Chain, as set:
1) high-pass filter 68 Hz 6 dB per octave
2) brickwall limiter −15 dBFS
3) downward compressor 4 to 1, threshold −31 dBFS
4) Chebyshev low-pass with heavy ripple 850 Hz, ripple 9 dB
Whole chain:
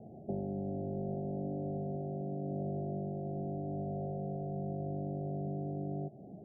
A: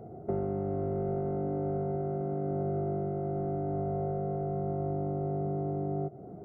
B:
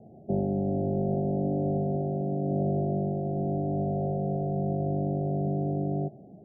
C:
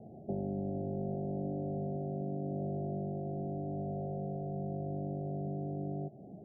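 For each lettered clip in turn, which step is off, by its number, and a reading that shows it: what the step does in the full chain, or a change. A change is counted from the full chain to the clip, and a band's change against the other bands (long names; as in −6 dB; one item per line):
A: 4, change in integrated loudness +5.5 LU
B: 3, average gain reduction 8.5 dB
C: 2, average gain reduction 2.0 dB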